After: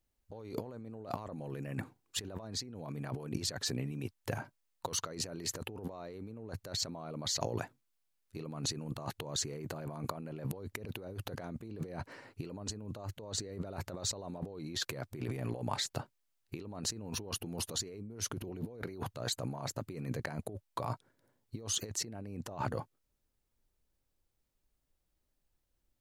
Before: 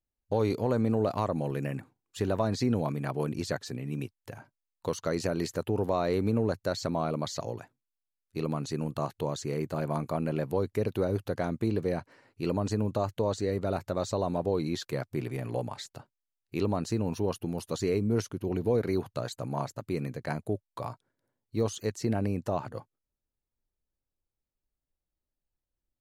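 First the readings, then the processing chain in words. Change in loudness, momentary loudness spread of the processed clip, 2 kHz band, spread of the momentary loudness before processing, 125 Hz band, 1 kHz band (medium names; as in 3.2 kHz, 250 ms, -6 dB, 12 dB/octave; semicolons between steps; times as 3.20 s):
-8.0 dB, 10 LU, -4.5 dB, 9 LU, -8.5 dB, -8.0 dB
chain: compressor with a negative ratio -40 dBFS, ratio -1; trim -1 dB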